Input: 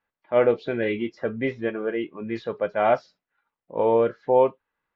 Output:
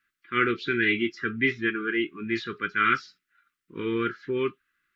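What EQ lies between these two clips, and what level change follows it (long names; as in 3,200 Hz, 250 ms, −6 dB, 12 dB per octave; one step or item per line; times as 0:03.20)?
elliptic band-stop filter 370–1,300 Hz, stop band 50 dB
tilt shelving filter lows −9.5 dB, about 860 Hz
high-shelf EQ 2,100 Hz −10.5 dB
+8.5 dB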